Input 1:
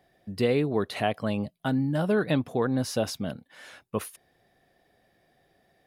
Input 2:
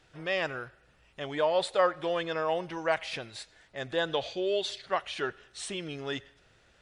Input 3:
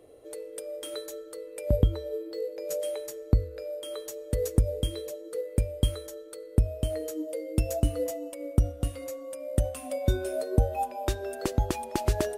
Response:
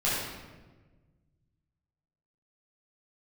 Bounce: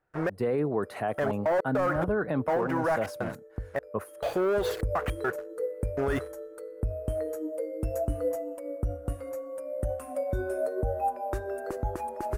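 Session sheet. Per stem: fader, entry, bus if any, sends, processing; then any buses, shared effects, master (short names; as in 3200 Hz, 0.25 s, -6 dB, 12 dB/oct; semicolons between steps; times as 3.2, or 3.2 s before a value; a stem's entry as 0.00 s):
-2.0 dB, 0.00 s, no send, de-esser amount 75%; three-band expander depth 70%
-6.5 dB, 0.00 s, no send, step gate "xx...xxxx.x." 103 bpm -60 dB; high shelf 5300 Hz -7.5 dB; sample leveller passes 5
-2.5 dB, 0.25 s, no send, auto duck -12 dB, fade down 0.40 s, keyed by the first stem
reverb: off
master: EQ curve 250 Hz 0 dB, 460 Hz +4 dB, 1500 Hz +5 dB, 3400 Hz -15 dB, 11000 Hz -4 dB; limiter -19.5 dBFS, peak gain reduction 9.5 dB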